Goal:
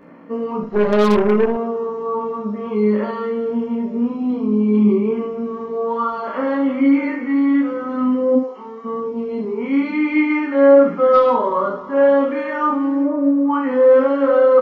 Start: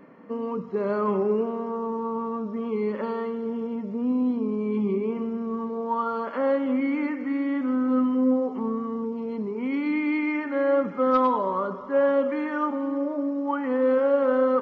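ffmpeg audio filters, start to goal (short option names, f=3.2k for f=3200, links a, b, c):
-filter_complex "[0:a]asplit=3[a][b][c];[a]afade=t=out:st=13.02:d=0.02[d];[b]lowpass=2.2k,afade=t=in:st=13.02:d=0.02,afade=t=out:st=13.49:d=0.02[e];[c]afade=t=in:st=13.49:d=0.02[f];[d][e][f]amix=inputs=3:normalize=0,flanger=delay=17:depth=2.2:speed=0.54,asplit=3[g][h][i];[g]afade=t=out:st=8.35:d=0.02[j];[h]highpass=f=1.5k:p=1,afade=t=in:st=8.35:d=0.02,afade=t=out:st=8.84:d=0.02[k];[i]afade=t=in:st=8.84:d=0.02[l];[j][k][l]amix=inputs=3:normalize=0,aecho=1:1:29|72:0.708|0.501,asettb=1/sr,asplit=3[m][n][o];[m]atrim=end=0.634[p];[n]atrim=start=0.63:end=1.57,asetpts=PTS-STARTPTS,afade=t=in:d=0.004:c=qsin,afade=t=out:st=0.936:d=0.004:c=qsin,aeval=exprs='0.188*(cos(1*acos(clip(val(0)/0.188,-1,1)))-cos(1*PI/2))+0.0237*(cos(6*acos(clip(val(0)/0.188,-1,1)))-cos(6*PI/2))':c=same[q];[o]atrim=start=1.566[r];[p][q]acrossfade=d=0.004:c1=hsin:c2=qsin[s];[s][r]acrossfade=d=0.004:c1=qsin:c2=hsin,volume=7.5dB"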